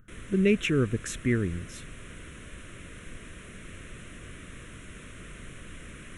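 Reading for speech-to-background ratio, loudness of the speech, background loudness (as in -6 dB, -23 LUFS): 18.5 dB, -27.0 LUFS, -45.5 LUFS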